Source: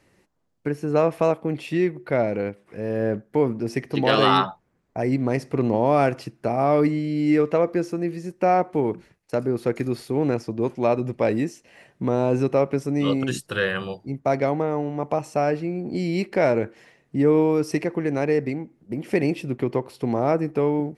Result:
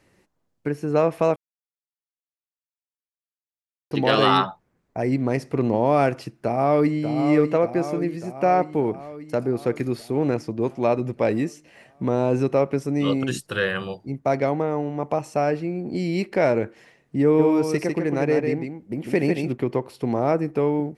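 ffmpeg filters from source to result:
-filter_complex "[0:a]asplit=2[a][b];[b]afade=t=in:st=6.4:d=0.01,afade=t=out:st=6.97:d=0.01,aecho=0:1:590|1180|1770|2360|2950|3540|4130|4720|5310:0.421697|0.274103|0.178167|0.115808|0.0752755|0.048929|0.0318039|0.0206725|0.0134371[c];[a][c]amix=inputs=2:normalize=0,asplit=3[d][e][f];[d]afade=t=out:st=17.38:d=0.02[g];[e]aecho=1:1:150:0.562,afade=t=in:st=17.38:d=0.02,afade=t=out:st=19.51:d=0.02[h];[f]afade=t=in:st=19.51:d=0.02[i];[g][h][i]amix=inputs=3:normalize=0,asplit=3[j][k][l];[j]atrim=end=1.36,asetpts=PTS-STARTPTS,afade=t=out:st=1.356:d=0.004:c=hsin[m];[k]atrim=start=1.36:end=3.91,asetpts=PTS-STARTPTS,volume=0[n];[l]atrim=start=3.91,asetpts=PTS-STARTPTS,afade=t=in:d=0.004:c=hsin[o];[m][n][o]concat=n=3:v=0:a=1"

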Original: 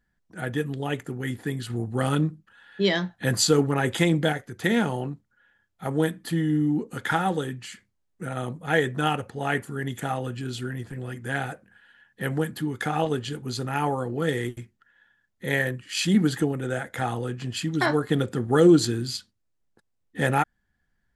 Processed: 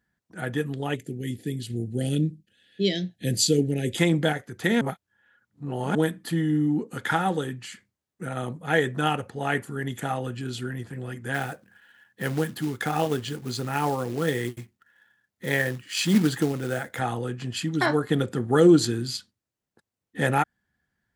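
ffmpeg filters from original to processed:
-filter_complex "[0:a]asplit=3[a][b][c];[a]afade=t=out:st=0.95:d=0.02[d];[b]asuperstop=centerf=1100:order=4:qfactor=0.52,afade=t=in:st=0.95:d=0.02,afade=t=out:st=3.96:d=0.02[e];[c]afade=t=in:st=3.96:d=0.02[f];[d][e][f]amix=inputs=3:normalize=0,asettb=1/sr,asplit=3[g][h][i];[g]atrim=end=11.344[j];[h]atrim=start=11.34:end=16.99,asetpts=PTS-STARTPTS,afade=t=in:d=0.004:c=qsin,afade=t=out:st=5.646:d=0.004:c=qsin,acrusher=bits=4:mode=log:mix=0:aa=0.000001[k];[i]atrim=start=16.986[l];[j][k]acrossfade=d=0.004:c1=hsin:c2=qsin[m];[m][l]acrossfade=d=0.004:c1=qsin:c2=hsin,asplit=3[n][o][p];[n]atrim=end=4.812[q];[o]atrim=start=4.808:end=5.952,asetpts=PTS-STARTPTS,areverse[r];[p]atrim=start=5.948[s];[q][r]acrossfade=d=0.004:c1=hsin:c2=hsin[t];[t][s]acrossfade=d=0.004:c1=hsin:c2=hsin,highpass=82"

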